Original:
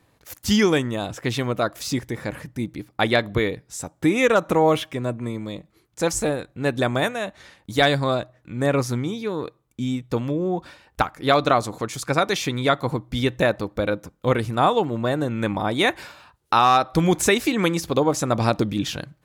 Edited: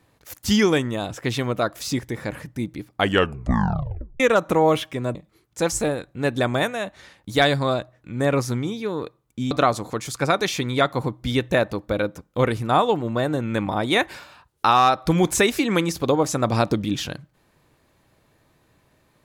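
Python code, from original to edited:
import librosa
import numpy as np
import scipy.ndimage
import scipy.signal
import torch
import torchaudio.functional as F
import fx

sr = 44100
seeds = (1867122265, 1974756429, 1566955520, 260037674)

y = fx.edit(x, sr, fx.tape_stop(start_s=2.92, length_s=1.28),
    fx.cut(start_s=5.15, length_s=0.41),
    fx.cut(start_s=9.92, length_s=1.47), tone=tone)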